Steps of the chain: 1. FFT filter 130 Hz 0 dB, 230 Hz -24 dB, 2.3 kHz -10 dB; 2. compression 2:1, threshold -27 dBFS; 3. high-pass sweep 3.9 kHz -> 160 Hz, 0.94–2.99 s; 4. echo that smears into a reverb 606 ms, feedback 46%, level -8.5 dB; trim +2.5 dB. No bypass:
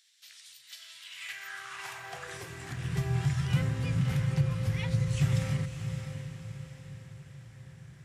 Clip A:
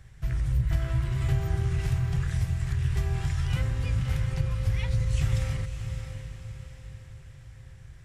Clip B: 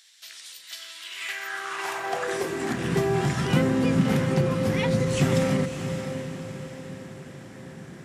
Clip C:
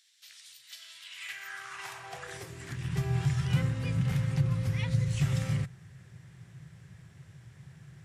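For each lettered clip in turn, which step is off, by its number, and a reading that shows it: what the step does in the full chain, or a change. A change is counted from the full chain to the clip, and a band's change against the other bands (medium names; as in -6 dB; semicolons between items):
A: 3, 125 Hz band +4.0 dB; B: 1, 500 Hz band +9.0 dB; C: 4, echo-to-direct -7.5 dB to none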